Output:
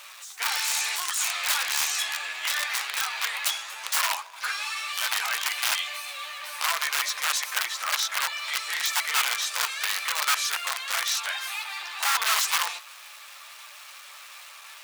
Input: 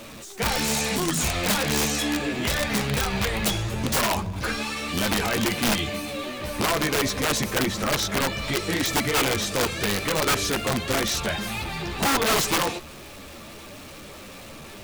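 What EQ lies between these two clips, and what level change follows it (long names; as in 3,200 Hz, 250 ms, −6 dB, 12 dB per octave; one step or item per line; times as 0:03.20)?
high-pass filter 980 Hz 24 dB per octave
0.0 dB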